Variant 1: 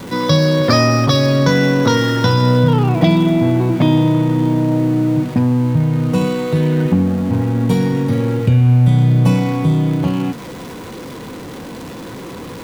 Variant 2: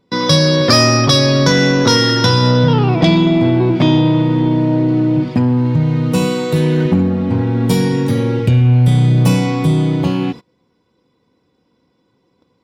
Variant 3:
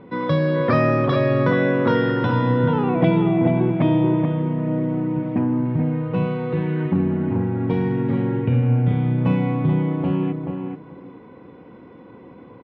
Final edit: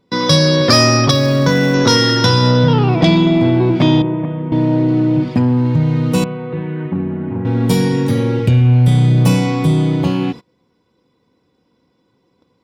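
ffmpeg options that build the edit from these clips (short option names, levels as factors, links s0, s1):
-filter_complex "[2:a]asplit=2[s0][s1];[1:a]asplit=4[s2][s3][s4][s5];[s2]atrim=end=1.112[s6];[0:a]atrim=start=1.108:end=1.742[s7];[s3]atrim=start=1.738:end=4.022[s8];[s0]atrim=start=4.018:end=4.522[s9];[s4]atrim=start=4.518:end=6.242[s10];[s1]atrim=start=6.238:end=7.452[s11];[s5]atrim=start=7.448[s12];[s6][s7]acrossfade=d=0.004:c1=hsin:c2=hsin[s13];[s13][s8]acrossfade=d=0.004:c1=hsin:c2=hsin[s14];[s14][s9]acrossfade=d=0.004:c1=hsin:c2=hsin[s15];[s15][s10]acrossfade=d=0.004:c1=hsin:c2=hsin[s16];[s16][s11]acrossfade=d=0.004:c1=hsin:c2=hsin[s17];[s17][s12]acrossfade=d=0.004:c1=hsin:c2=hsin"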